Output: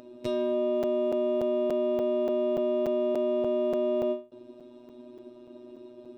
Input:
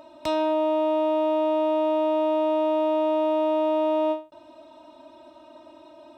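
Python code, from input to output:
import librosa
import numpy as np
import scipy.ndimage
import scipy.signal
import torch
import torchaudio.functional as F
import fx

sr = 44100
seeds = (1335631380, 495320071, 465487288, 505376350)

y = fx.low_shelf_res(x, sr, hz=570.0, db=11.0, q=3.0)
y = fx.robotise(y, sr, hz=122.0)
y = fx.buffer_crackle(y, sr, first_s=0.83, period_s=0.29, block=256, kind='zero')
y = y * librosa.db_to_amplitude(-5.5)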